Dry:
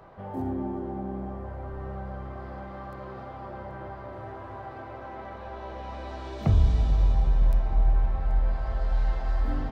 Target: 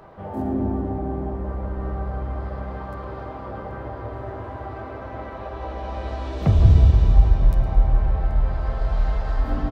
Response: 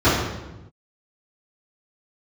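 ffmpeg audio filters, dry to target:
-filter_complex "[0:a]aecho=1:1:110|220|330|440:0.158|0.065|0.0266|0.0109,asplit=2[a][b];[b]asetrate=35002,aresample=44100,atempo=1.25992,volume=-6dB[c];[a][c]amix=inputs=2:normalize=0,asplit=2[d][e];[1:a]atrim=start_sample=2205,adelay=138[f];[e][f]afir=irnorm=-1:irlink=0,volume=-30.5dB[g];[d][g]amix=inputs=2:normalize=0,volume=3.5dB"

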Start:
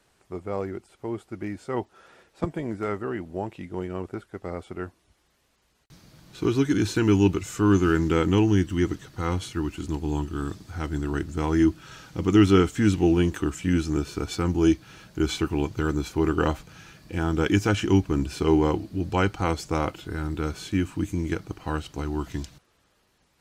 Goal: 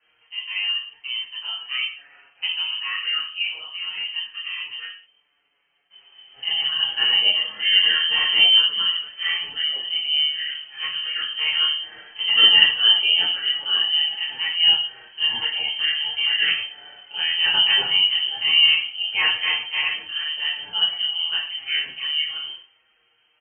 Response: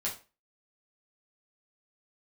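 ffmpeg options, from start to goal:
-filter_complex "[0:a]asettb=1/sr,asplit=3[a][b][c];[a]atrim=end=4.744[d];[b]atrim=start=4.74:end=6.96,asetpts=PTS-STARTPTS,afade=t=in:d=0.004:c=qsin,afade=t=out:st=2.216:d=0.004:c=qsin,tremolo=f=83:d=0.519[e];[c]atrim=start=6.956[f];[d][e]acrossfade=d=0.004:c1=hsin:c2=qsin[g];[g][f]acrossfade=d=0.004:c1=qsin:c2=hsin[h];[1:a]atrim=start_sample=2205,atrim=end_sample=6174,asetrate=28665,aresample=44100[i];[h][i]afir=irnorm=-1:irlink=0,lowpass=f=2.7k:t=q:w=0.5098,lowpass=f=2.7k:t=q:w=0.6013,lowpass=f=2.7k:t=q:w=0.9,lowpass=f=2.7k:t=q:w=2.563,afreqshift=-3200,asplit=2[j][k];[k]adelay=6,afreqshift=-0.26[l];[j][l]amix=inputs=2:normalize=1"

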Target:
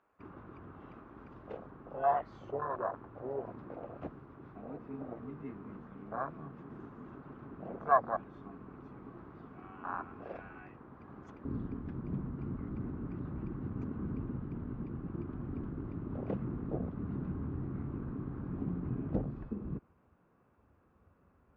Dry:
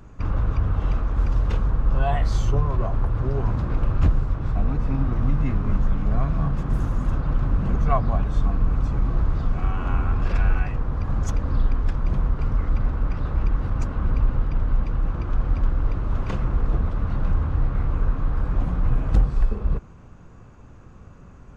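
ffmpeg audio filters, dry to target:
-af "afwtdn=0.0501,asetnsamples=n=441:p=0,asendcmd='11.45 highpass f 220',highpass=570,lowpass=2.2k"

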